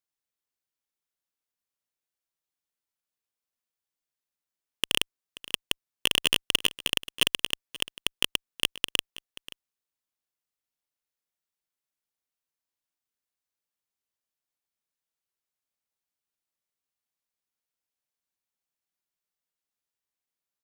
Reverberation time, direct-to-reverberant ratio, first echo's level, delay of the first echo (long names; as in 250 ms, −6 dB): no reverb audible, no reverb audible, −18.5 dB, 532 ms